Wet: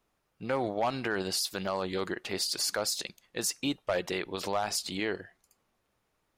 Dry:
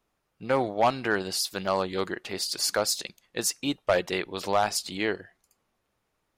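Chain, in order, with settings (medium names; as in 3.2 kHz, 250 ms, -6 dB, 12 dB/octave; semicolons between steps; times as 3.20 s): peak limiter -20 dBFS, peak gain reduction 8.5 dB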